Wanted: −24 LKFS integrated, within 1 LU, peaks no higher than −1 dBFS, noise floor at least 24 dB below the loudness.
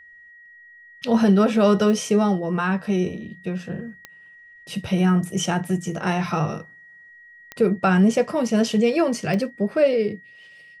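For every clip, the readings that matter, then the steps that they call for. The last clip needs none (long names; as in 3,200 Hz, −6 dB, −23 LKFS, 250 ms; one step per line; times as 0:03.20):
number of clicks 4; interfering tone 1,900 Hz; level of the tone −45 dBFS; integrated loudness −21.0 LKFS; sample peak −7.0 dBFS; target loudness −24.0 LKFS
→ click removal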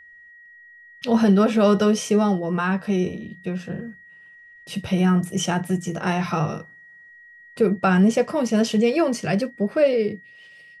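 number of clicks 0; interfering tone 1,900 Hz; level of the tone −45 dBFS
→ notch filter 1,900 Hz, Q 30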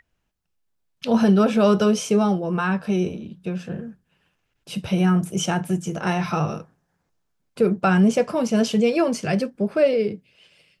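interfering tone none found; integrated loudness −21.0 LKFS; sample peak −7.0 dBFS; target loudness −24.0 LKFS
→ level −3 dB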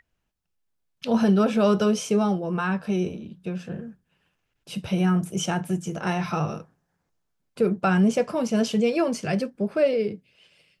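integrated loudness −24.0 LKFS; sample peak −10.0 dBFS; background noise floor −77 dBFS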